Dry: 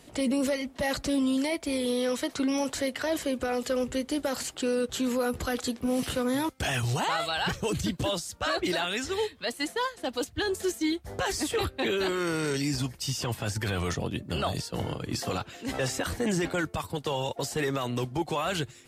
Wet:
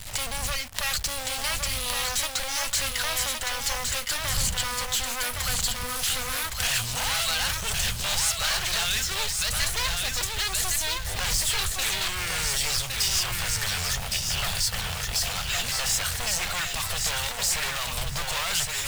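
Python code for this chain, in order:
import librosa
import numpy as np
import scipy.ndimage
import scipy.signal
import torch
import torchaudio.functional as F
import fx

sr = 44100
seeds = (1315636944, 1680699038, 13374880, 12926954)

p1 = np.minimum(x, 2.0 * 10.0 ** (-30.5 / 20.0) - x)
p2 = fx.recorder_agc(p1, sr, target_db=-25.0, rise_db_per_s=79.0, max_gain_db=30)
p3 = fx.dmg_wind(p2, sr, seeds[0], corner_hz=170.0, level_db=-39.0)
p4 = fx.quant_companded(p3, sr, bits=2)
p5 = p3 + (p4 * librosa.db_to_amplitude(-8.5))
p6 = fx.tone_stack(p5, sr, knobs='10-0-10')
p7 = p6 + fx.echo_feedback(p6, sr, ms=1114, feedback_pct=23, wet_db=-4.0, dry=0)
y = p7 * librosa.db_to_amplitude(5.5)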